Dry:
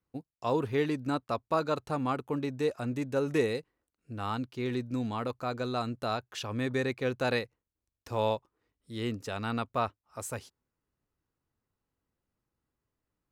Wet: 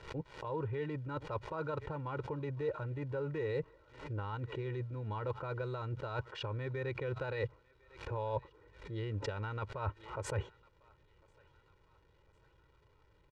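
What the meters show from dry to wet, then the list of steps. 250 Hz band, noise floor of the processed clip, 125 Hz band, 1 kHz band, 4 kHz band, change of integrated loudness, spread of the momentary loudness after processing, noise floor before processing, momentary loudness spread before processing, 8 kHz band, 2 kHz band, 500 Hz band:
−12.0 dB, −68 dBFS, −1.0 dB, −8.5 dB, −10.0 dB, −7.0 dB, 5 LU, below −85 dBFS, 9 LU, −10.0 dB, −7.0 dB, −7.0 dB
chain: adaptive Wiener filter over 9 samples
dynamic equaliser 430 Hz, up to −6 dB, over −41 dBFS, Q 0.89
brickwall limiter −29.5 dBFS, peak gain reduction 10 dB
reversed playback
downward compressor 16 to 1, threshold −50 dBFS, peak gain reduction 18 dB
reversed playback
surface crackle 470 per second −69 dBFS
head-to-tape spacing loss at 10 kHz 32 dB
comb filter 2.1 ms, depth 86%
on a send: feedback echo with a high-pass in the loop 1,051 ms, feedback 63%, high-pass 850 Hz, level −23 dB
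on the sum: background raised ahead of every attack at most 110 dB per second
level +15 dB

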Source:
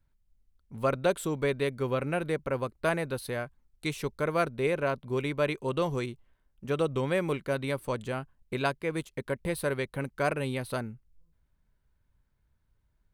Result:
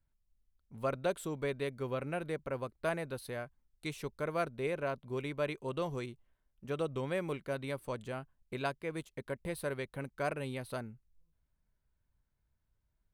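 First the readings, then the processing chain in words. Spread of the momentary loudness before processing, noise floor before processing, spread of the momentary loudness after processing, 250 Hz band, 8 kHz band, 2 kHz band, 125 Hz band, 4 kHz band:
8 LU, −73 dBFS, 8 LU, −7.5 dB, −7.5 dB, −7.5 dB, −7.5 dB, −7.5 dB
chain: parametric band 660 Hz +2.5 dB 0.31 octaves
level −7.5 dB

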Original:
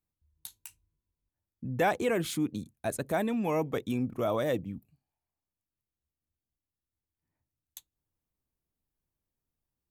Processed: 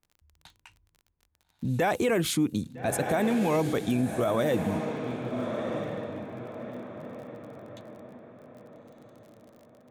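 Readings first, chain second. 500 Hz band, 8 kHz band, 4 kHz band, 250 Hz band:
+4.0 dB, +6.0 dB, +6.0 dB, +5.5 dB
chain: on a send: feedback delay with all-pass diffusion 1,295 ms, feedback 42%, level −9 dB
on the sum: low-pass that shuts in the quiet parts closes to 1,700 Hz, open at −28.5 dBFS
brickwall limiter −24.5 dBFS, peak gain reduction 7.5 dB
surface crackle 35 per second −51 dBFS
level +7 dB

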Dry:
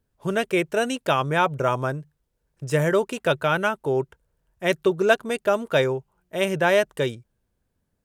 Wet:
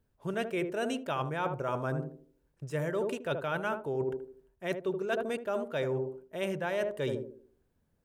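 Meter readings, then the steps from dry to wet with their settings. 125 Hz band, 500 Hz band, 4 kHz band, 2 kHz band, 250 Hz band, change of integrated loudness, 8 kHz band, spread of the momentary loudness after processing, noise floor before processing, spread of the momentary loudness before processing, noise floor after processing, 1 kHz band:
−9.0 dB, −10.0 dB, −13.0 dB, −12.5 dB, −8.5 dB, −10.5 dB, −13.5 dB, 6 LU, −75 dBFS, 8 LU, −75 dBFS, −11.0 dB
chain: parametric band 8,100 Hz −4 dB 2.7 octaves
feedback echo with a band-pass in the loop 77 ms, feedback 43%, band-pass 330 Hz, level −6.5 dB
reversed playback
downward compressor 6 to 1, threshold −30 dBFS, peak gain reduction 16.5 dB
reversed playback

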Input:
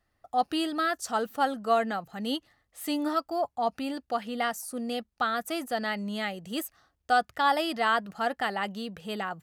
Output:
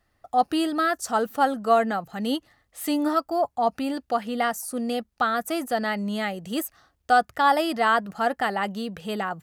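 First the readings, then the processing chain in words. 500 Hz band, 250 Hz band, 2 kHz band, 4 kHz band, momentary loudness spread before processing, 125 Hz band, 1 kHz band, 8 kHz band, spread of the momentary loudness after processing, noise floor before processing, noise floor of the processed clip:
+5.5 dB, +5.5 dB, +3.5 dB, +1.0 dB, 9 LU, +5.5 dB, +5.0 dB, +4.5 dB, 9 LU, −77 dBFS, −71 dBFS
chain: dynamic equaliser 3,400 Hz, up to −5 dB, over −44 dBFS, Q 0.81
level +5.5 dB

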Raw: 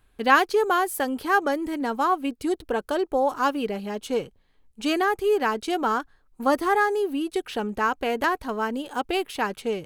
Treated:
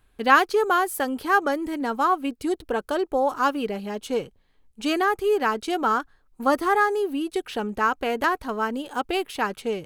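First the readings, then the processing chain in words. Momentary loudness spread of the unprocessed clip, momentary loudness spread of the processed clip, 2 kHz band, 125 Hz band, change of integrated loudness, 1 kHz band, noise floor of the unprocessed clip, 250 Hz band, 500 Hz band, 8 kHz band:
8 LU, 9 LU, +1.0 dB, can't be measured, +0.5 dB, +1.0 dB, −63 dBFS, 0.0 dB, 0.0 dB, 0.0 dB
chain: dynamic equaliser 1,300 Hz, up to +4 dB, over −38 dBFS, Q 4.2

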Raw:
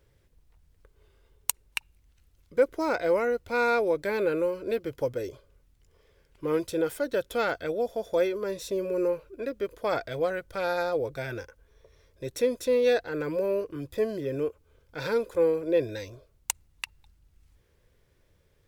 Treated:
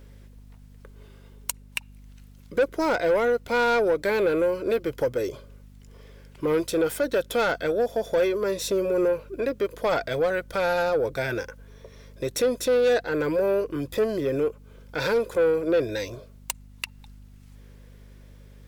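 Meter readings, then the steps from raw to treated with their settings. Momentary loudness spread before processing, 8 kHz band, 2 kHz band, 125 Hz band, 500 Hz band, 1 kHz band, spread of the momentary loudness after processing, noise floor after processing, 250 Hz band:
12 LU, +1.5 dB, +4.5 dB, +4.0 dB, +3.5 dB, +4.0 dB, 12 LU, −49 dBFS, +4.0 dB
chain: in parallel at +2 dB: downward compressor, threshold −38 dBFS, peak gain reduction 19 dB
on the sum: low-shelf EQ 110 Hz −10 dB
soft clipping −20.5 dBFS, distortion −14 dB
mains hum 50 Hz, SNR 22 dB
level +4.5 dB

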